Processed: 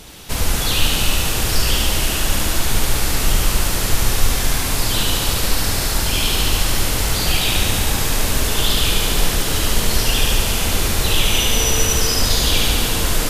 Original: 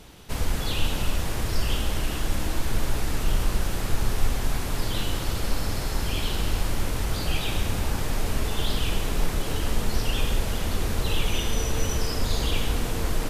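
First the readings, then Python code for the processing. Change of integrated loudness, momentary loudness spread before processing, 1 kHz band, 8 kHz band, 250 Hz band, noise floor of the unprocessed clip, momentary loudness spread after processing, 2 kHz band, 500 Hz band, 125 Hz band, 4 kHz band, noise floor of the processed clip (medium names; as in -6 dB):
+10.5 dB, 2 LU, +8.5 dB, +15.5 dB, +6.5 dB, -29 dBFS, 3 LU, +11.0 dB, +7.0 dB, +6.0 dB, +13.5 dB, -21 dBFS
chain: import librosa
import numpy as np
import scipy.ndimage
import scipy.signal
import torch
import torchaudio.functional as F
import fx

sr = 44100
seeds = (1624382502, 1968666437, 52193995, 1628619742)

y = fx.high_shelf(x, sr, hz=2800.0, db=7.5)
y = fx.echo_thinned(y, sr, ms=72, feedback_pct=80, hz=500.0, wet_db=-4.5)
y = y * librosa.db_to_amplitude(6.0)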